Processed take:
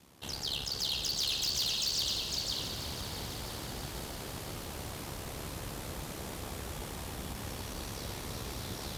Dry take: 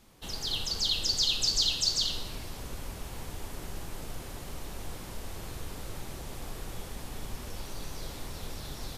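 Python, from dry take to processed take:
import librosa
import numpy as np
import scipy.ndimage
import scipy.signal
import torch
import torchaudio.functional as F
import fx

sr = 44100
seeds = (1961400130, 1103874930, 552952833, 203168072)

p1 = x * np.sin(2.0 * np.pi * 35.0 * np.arange(len(x)) / sr)
p2 = p1 + 10.0 ** (-6.0 / 20.0) * np.pad(p1, (int(506 * sr / 1000.0), 0))[:len(p1)]
p3 = fx.rider(p2, sr, range_db=4, speed_s=0.5)
p4 = p2 + (p3 * 10.0 ** (-2.0 / 20.0))
p5 = np.clip(p4, -10.0 ** (-24.5 / 20.0), 10.0 ** (-24.5 / 20.0))
p6 = scipy.signal.sosfilt(scipy.signal.butter(2, 78.0, 'highpass', fs=sr, output='sos'), p5)
p7 = fx.echo_crushed(p6, sr, ms=328, feedback_pct=80, bits=9, wet_db=-11.5)
y = p7 * 10.0 ** (-3.5 / 20.0)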